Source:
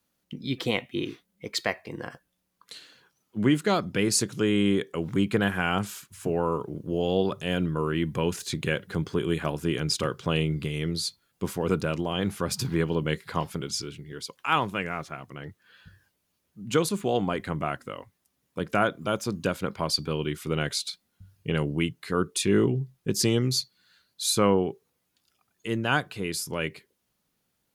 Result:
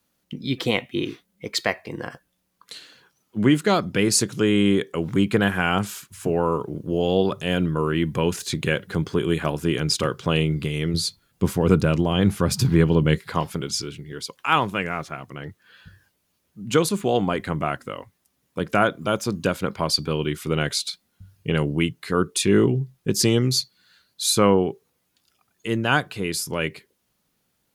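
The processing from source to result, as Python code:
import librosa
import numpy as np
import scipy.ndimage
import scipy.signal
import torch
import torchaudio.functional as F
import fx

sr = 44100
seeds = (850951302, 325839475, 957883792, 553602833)

y = fx.low_shelf(x, sr, hz=220.0, db=9.0, at=(10.94, 13.19))
y = y * librosa.db_to_amplitude(4.5)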